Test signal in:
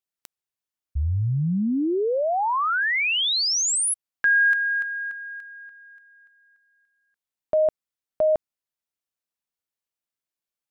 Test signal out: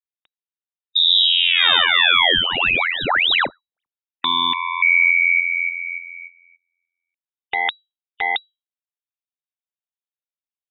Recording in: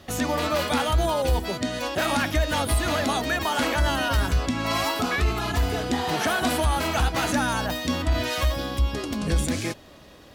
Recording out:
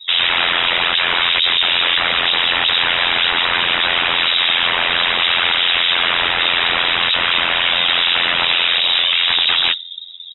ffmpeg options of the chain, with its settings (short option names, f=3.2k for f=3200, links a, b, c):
-af "afftdn=nr=32:nf=-38,equalizer=f=125:t=o:w=1:g=4,equalizer=f=250:t=o:w=1:g=10,equalizer=f=1k:t=o:w=1:g=6,aeval=exprs='0.562*(cos(1*acos(clip(val(0)/0.562,-1,1)))-cos(1*PI/2))+0.0631*(cos(5*acos(clip(val(0)/0.562,-1,1)))-cos(5*PI/2))':c=same,aresample=11025,aeval=exprs='0.531*sin(PI/2*7.94*val(0)/0.531)':c=same,aresample=44100,tremolo=f=86:d=0.889,lowpass=f=3.3k:t=q:w=0.5098,lowpass=f=3.3k:t=q:w=0.6013,lowpass=f=3.3k:t=q:w=0.9,lowpass=f=3.3k:t=q:w=2.563,afreqshift=-3900,volume=-3dB"